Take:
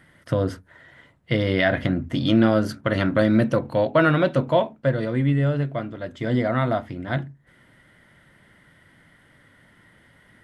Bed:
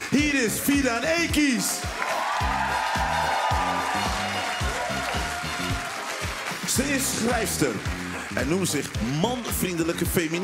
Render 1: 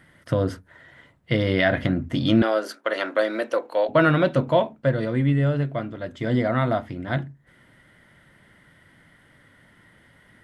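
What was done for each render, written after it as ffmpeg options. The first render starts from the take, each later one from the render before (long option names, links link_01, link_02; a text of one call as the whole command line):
ffmpeg -i in.wav -filter_complex "[0:a]asettb=1/sr,asplit=3[link_01][link_02][link_03];[link_01]atrim=end=2.424[link_04];[link_02]atrim=start=2.42:end=3.89,asetpts=PTS-STARTPTS,afade=type=in:duration=0.004:curve=qsin,afade=type=out:start_time=1.466:duration=0.004:curve=qsin,highpass=frequency=390:width=0.5412,highpass=frequency=390:width=1.3066[link_05];[link_03]atrim=start=3.886[link_06];[link_04][link_05]acrossfade=duration=0.004:curve1=hsin:curve2=qsin[link_07];[link_07][link_06]acrossfade=duration=0.004:curve1=qsin:curve2=hsin" out.wav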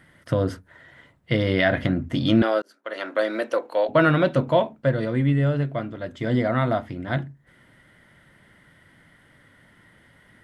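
ffmpeg -i in.wav -filter_complex "[0:a]asplit=2[link_01][link_02];[link_01]atrim=end=2.62,asetpts=PTS-STARTPTS,afade=type=out:start_time=2.616:duration=0.004:curve=hsin[link_03];[link_02]atrim=start=2.62,asetpts=PTS-STARTPTS,afade=type=in:duration=0.67[link_04];[link_03][link_04]concat=n=2:v=0:a=1" out.wav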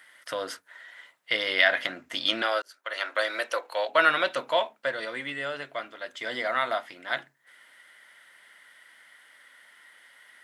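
ffmpeg -i in.wav -af "highpass=590,tiltshelf=frequency=1100:gain=-6.5" out.wav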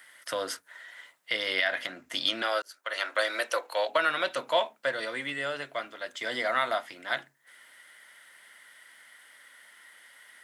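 ffmpeg -i in.wav -filter_complex "[0:a]acrossover=split=200|5300[link_01][link_02][link_03];[link_03]acontrast=35[link_04];[link_01][link_02][link_04]amix=inputs=3:normalize=0,alimiter=limit=-13.5dB:level=0:latency=1:release=416" out.wav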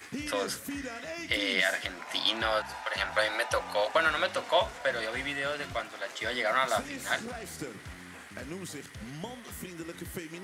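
ffmpeg -i in.wav -i bed.wav -filter_complex "[1:a]volume=-16dB[link_01];[0:a][link_01]amix=inputs=2:normalize=0" out.wav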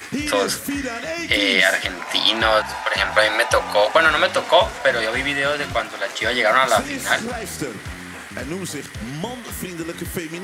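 ffmpeg -i in.wav -af "volume=12dB,alimiter=limit=-3dB:level=0:latency=1" out.wav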